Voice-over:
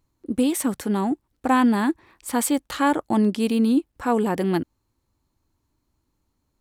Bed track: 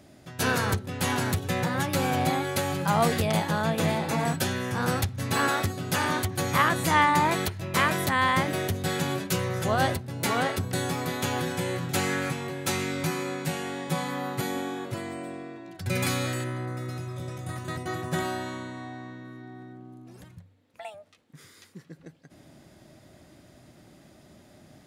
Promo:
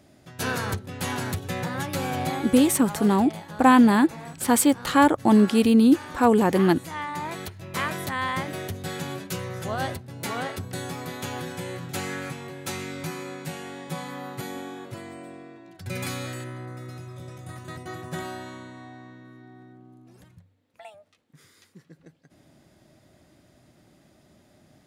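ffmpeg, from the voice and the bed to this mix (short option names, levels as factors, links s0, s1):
-filter_complex "[0:a]adelay=2150,volume=1.41[s0];[1:a]volume=2,afade=t=out:st=2.37:d=0.61:silence=0.298538,afade=t=in:st=6.95:d=0.9:silence=0.375837[s1];[s0][s1]amix=inputs=2:normalize=0"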